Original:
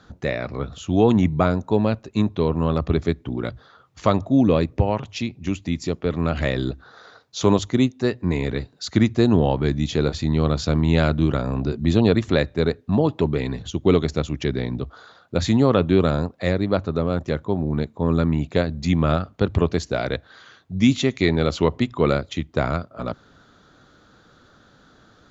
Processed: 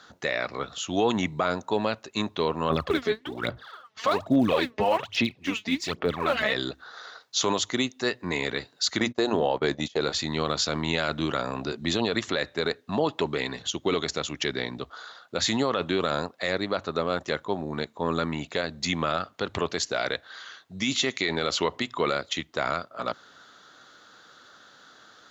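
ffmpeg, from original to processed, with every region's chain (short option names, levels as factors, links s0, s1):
-filter_complex "[0:a]asettb=1/sr,asplit=3[s0][s1][s2];[s0]atrim=end=2.704[s3];[s1]atrim=start=2.7:end=6.53,asetpts=PTS-STARTPTS,afade=t=in:d=0.004:c=qsin,afade=t=out:st=3.826:d=0.004:c=qsin,lowpass=4100,aphaser=in_gain=1:out_gain=1:delay=4.7:decay=0.74:speed=1.2:type=sinusoidal[s4];[s2]atrim=start=6.526[s5];[s3][s4]acrossfade=d=0.004:c1=hsin:c2=qsin[s6];[s6][s5]acrossfade=d=0.004:c1=qsin:c2=hsin,asettb=1/sr,asplit=3[s7][s8][s9];[s7]atrim=end=9.004[s10];[s8]atrim=start=9:end=10.01,asetpts=PTS-STARTPTS,afade=t=in:d=0.004:c=qsin,afade=t=out:st=1.006:d=0.004:c=qsin,bandreject=f=60:t=h:w=6,bandreject=f=120:t=h:w=6,bandreject=f=180:t=h:w=6,bandreject=f=240:t=h:w=6,agate=range=0.0447:threshold=0.0562:ratio=16:release=100:detection=peak,equalizer=f=540:w=0.89:g=6.5[s11];[s9]atrim=start=10.006[s12];[s10][s11]acrossfade=d=0.004:c1=hsin:c2=qsin[s13];[s13][s12]acrossfade=d=0.004:c1=qsin:c2=hsin,highpass=f=1400:p=1,bandreject=f=2400:w=18,alimiter=limit=0.1:level=0:latency=1:release=29,volume=2.11"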